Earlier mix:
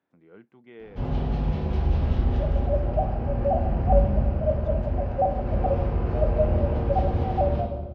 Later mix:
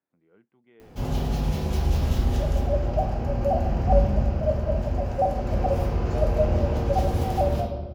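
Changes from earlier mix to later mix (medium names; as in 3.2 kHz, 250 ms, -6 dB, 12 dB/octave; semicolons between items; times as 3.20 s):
speech -10.0 dB; first sound: remove distance through air 320 m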